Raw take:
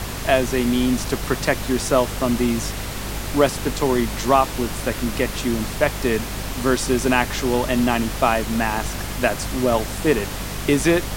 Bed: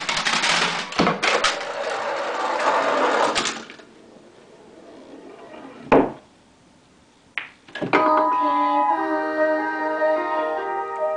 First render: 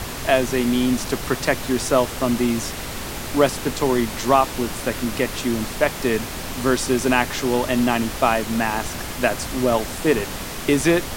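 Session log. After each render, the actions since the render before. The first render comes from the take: de-hum 50 Hz, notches 4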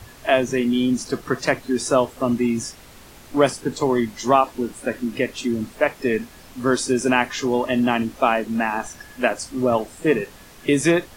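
noise print and reduce 15 dB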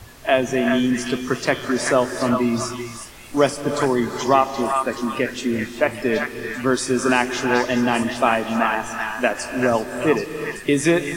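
delay with a stepping band-pass 0.388 s, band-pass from 1500 Hz, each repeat 1.4 oct, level -1 dB; non-linear reverb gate 0.41 s rising, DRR 7.5 dB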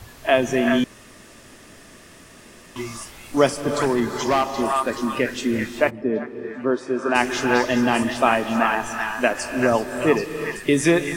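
0.84–2.76 room tone; 3.59–4.91 hard clip -14.5 dBFS; 5.89–7.14 band-pass 210 Hz -> 760 Hz, Q 0.8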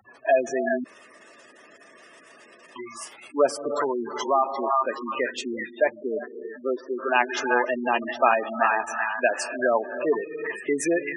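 spectral gate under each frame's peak -15 dB strong; HPF 470 Hz 12 dB/oct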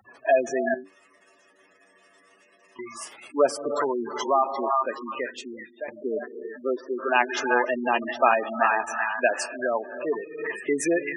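0.74–2.79 metallic resonator 94 Hz, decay 0.23 s, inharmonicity 0.002; 4.6–5.88 fade out, to -14.5 dB; 9.46–10.38 gain -4 dB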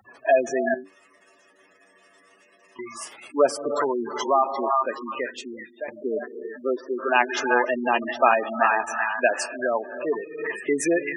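gain +1.5 dB

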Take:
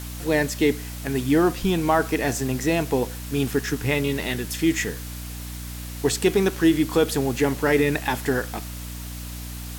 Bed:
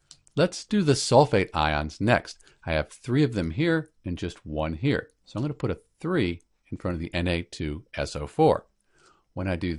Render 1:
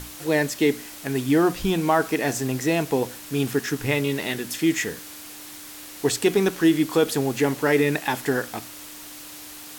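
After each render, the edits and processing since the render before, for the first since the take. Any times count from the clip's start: notches 60/120/180/240 Hz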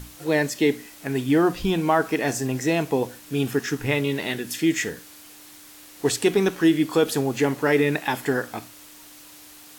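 noise print and reduce 6 dB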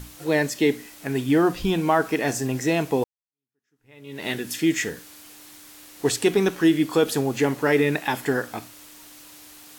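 3.04–4.27 fade in exponential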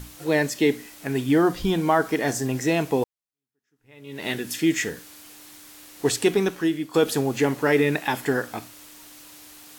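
1.32–2.48 notch 2600 Hz, Q 8.6; 6.26–6.94 fade out, to -11.5 dB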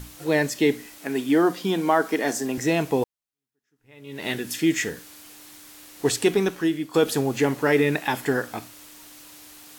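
0.98–2.58 HPF 190 Hz 24 dB/oct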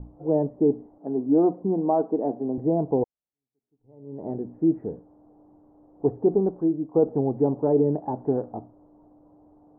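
steep low-pass 820 Hz 36 dB/oct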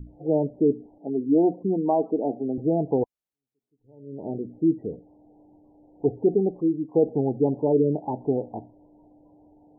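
spectral gate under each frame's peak -25 dB strong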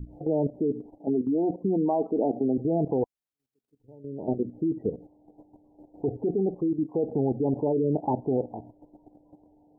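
in parallel at +1 dB: limiter -20.5 dBFS, peak gain reduction 10 dB; on the sum: level quantiser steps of 12 dB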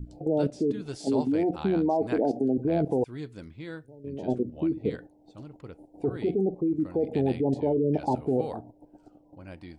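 add bed -16 dB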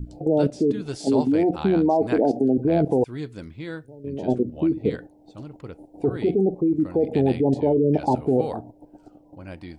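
gain +5.5 dB

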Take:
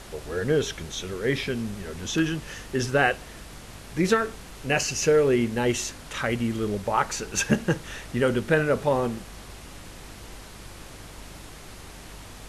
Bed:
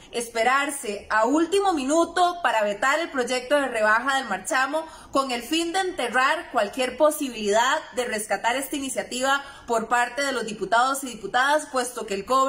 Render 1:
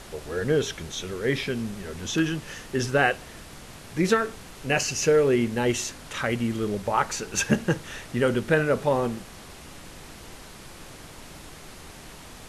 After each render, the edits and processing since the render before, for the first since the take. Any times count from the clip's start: de-hum 50 Hz, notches 2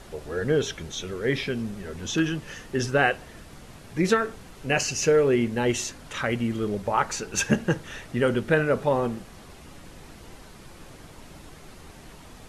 denoiser 6 dB, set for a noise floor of -45 dBFS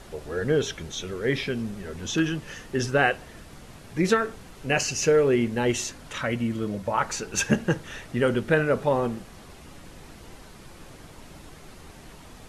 6.18–7.02 notch comb 400 Hz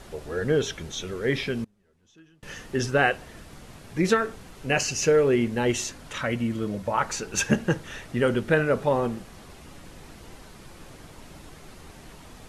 1.64–2.43 flipped gate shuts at -32 dBFS, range -30 dB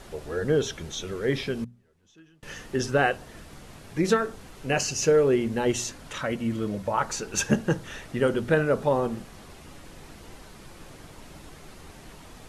notches 60/120/180/240 Hz; dynamic EQ 2200 Hz, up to -5 dB, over -40 dBFS, Q 1.4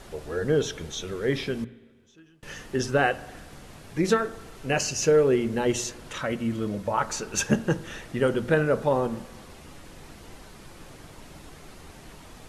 spring tank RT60 1.4 s, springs 39/46 ms, chirp 50 ms, DRR 17.5 dB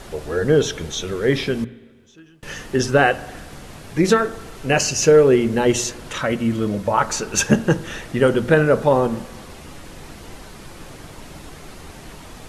gain +7.5 dB; limiter -3 dBFS, peak gain reduction 2 dB

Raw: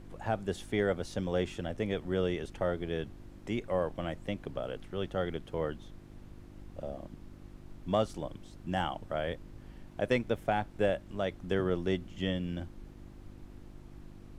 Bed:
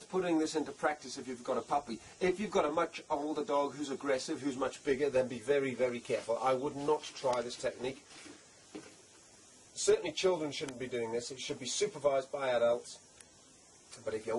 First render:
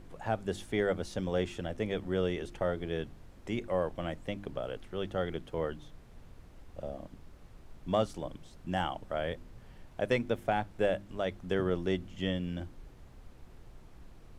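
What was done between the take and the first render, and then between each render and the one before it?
de-hum 50 Hz, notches 7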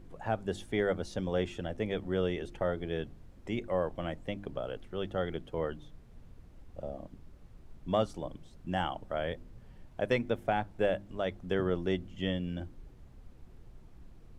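denoiser 6 dB, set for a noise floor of -54 dBFS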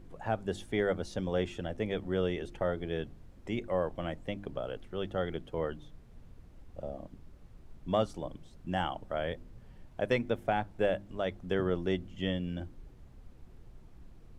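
nothing audible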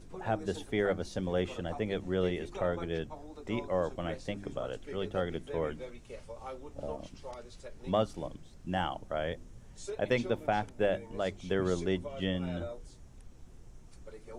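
add bed -12.5 dB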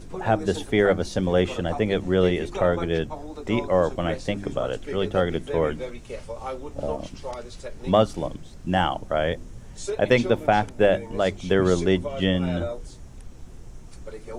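gain +10.5 dB

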